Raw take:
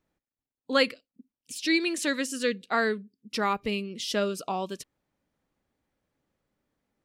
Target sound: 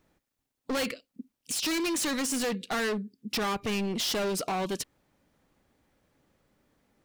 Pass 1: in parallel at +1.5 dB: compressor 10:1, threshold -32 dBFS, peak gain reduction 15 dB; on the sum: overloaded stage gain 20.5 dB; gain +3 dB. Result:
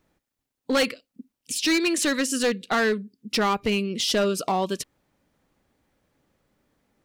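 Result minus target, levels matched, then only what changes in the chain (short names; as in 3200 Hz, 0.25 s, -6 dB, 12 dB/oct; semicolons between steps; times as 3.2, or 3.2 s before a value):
overloaded stage: distortion -7 dB
change: overloaded stage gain 30.5 dB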